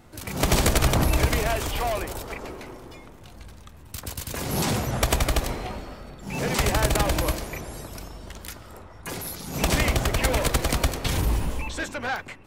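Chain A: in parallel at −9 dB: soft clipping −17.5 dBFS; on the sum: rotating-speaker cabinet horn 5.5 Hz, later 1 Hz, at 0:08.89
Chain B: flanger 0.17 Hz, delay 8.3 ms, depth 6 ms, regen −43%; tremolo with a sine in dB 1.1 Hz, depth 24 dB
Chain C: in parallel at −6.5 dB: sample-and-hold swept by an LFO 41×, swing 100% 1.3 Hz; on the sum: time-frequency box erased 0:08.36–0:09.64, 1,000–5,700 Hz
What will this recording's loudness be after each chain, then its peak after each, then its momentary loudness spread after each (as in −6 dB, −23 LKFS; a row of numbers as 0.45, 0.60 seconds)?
−25.5, −35.0, −23.5 LKFS; −5.0, −12.5, −5.0 dBFS; 18, 21, 19 LU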